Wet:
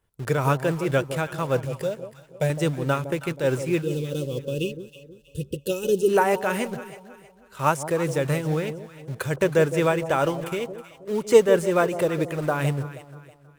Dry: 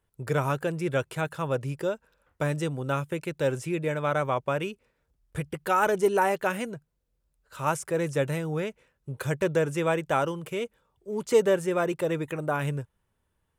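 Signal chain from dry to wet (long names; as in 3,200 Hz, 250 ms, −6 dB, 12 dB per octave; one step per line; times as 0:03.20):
0:01.65–0:02.50: phaser with its sweep stopped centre 310 Hz, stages 6
in parallel at −9 dB: bit-depth reduction 6 bits, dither none
0:03.81–0:06.09: on the sum: gain on a spectral selection 580–2,500 Hz −28 dB
shaped tremolo triangle 4.6 Hz, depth 55%
delay that swaps between a low-pass and a high-pass 160 ms, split 820 Hz, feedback 59%, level −10 dB
level +4 dB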